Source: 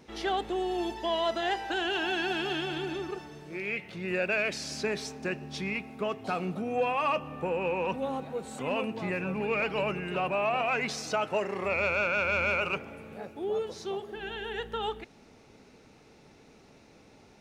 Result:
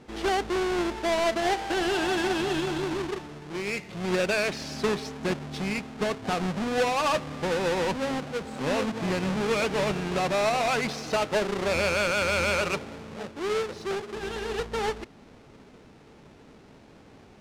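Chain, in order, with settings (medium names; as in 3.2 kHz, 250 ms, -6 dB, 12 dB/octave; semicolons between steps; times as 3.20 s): square wave that keeps the level; distance through air 64 m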